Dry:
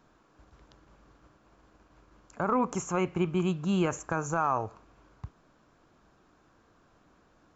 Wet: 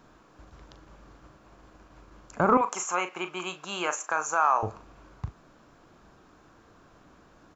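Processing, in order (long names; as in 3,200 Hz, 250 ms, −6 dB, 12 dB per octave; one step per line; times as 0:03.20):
0:02.57–0:04.63: high-pass filter 800 Hz 12 dB per octave
double-tracking delay 39 ms −11 dB
level +6.5 dB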